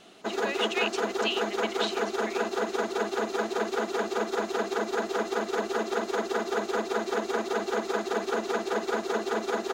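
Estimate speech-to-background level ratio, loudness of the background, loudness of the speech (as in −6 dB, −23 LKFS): −4.5 dB, −29.5 LKFS, −34.0 LKFS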